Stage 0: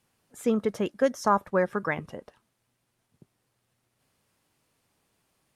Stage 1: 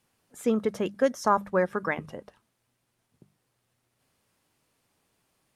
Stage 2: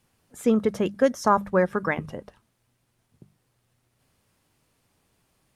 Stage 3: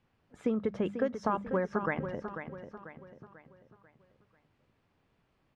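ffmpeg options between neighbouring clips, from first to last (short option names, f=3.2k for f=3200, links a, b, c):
-af "bandreject=f=50:t=h:w=6,bandreject=f=100:t=h:w=6,bandreject=f=150:t=h:w=6,bandreject=f=200:t=h:w=6"
-af "lowshelf=f=140:g=9,volume=2.5dB"
-filter_complex "[0:a]lowpass=2.8k,acompressor=threshold=-23dB:ratio=5,asplit=2[a][b];[b]aecho=0:1:492|984|1476|1968|2460:0.355|0.153|0.0656|0.0282|0.0121[c];[a][c]amix=inputs=2:normalize=0,volume=-3.5dB"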